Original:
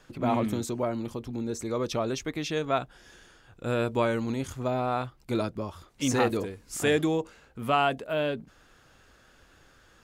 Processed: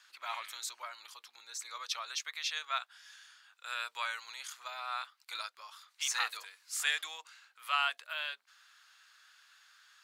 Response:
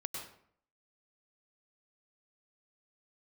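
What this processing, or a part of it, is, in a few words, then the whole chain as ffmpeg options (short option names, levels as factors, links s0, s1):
headphones lying on a table: -af "highpass=f=1200:w=0.5412,highpass=f=1200:w=1.3066,equalizer=f=4200:t=o:w=0.54:g=6,volume=0.841"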